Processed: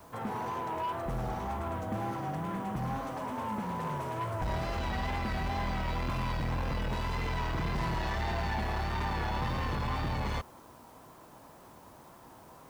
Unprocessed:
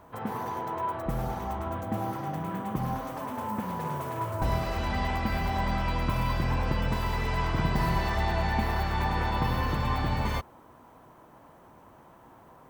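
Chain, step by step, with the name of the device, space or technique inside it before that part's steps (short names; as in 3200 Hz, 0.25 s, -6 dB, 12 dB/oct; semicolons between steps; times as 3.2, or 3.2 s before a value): compact cassette (soft clip -28.5 dBFS, distortion -10 dB; LPF 8800 Hz; wow and flutter; white noise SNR 30 dB)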